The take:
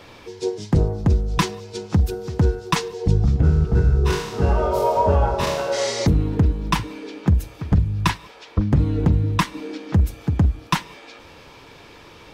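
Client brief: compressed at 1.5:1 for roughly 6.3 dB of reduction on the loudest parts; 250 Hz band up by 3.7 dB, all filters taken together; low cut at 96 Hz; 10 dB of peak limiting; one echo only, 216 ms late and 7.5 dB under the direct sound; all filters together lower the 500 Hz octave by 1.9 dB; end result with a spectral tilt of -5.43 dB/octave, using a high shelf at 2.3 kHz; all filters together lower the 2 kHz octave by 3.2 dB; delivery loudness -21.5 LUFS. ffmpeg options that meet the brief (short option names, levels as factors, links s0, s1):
-af "highpass=96,equalizer=f=250:t=o:g=7,equalizer=f=500:t=o:g=-4.5,equalizer=f=2000:t=o:g=-8.5,highshelf=f=2300:g=7.5,acompressor=threshold=0.0355:ratio=1.5,alimiter=limit=0.112:level=0:latency=1,aecho=1:1:216:0.422,volume=2.37"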